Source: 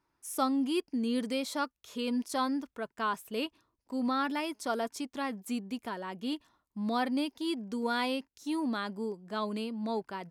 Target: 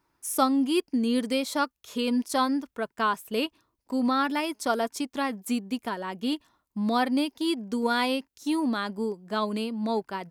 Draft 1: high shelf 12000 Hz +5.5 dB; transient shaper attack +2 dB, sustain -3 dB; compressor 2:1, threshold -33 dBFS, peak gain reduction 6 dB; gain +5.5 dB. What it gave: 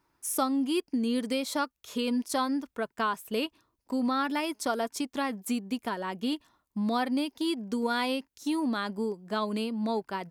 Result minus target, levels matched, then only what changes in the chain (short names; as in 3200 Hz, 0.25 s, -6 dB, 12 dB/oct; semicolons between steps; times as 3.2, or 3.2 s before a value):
compressor: peak gain reduction +6 dB
remove: compressor 2:1, threshold -33 dBFS, peak gain reduction 6 dB